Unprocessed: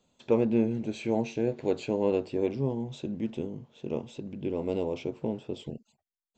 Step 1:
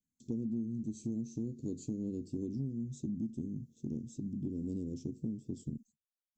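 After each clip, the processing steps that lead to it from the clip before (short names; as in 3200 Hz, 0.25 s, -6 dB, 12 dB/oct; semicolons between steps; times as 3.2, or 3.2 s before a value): gate with hold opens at -48 dBFS; Chebyshev band-stop 270–6300 Hz, order 3; compressor 6:1, threshold -37 dBFS, peak gain reduction 14 dB; gain +3 dB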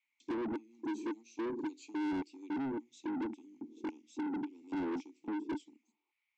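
LFO high-pass square 1.8 Hz 380–1800 Hz; vowel filter u; overdrive pedal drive 33 dB, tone 2900 Hz, clips at -35 dBFS; gain +5.5 dB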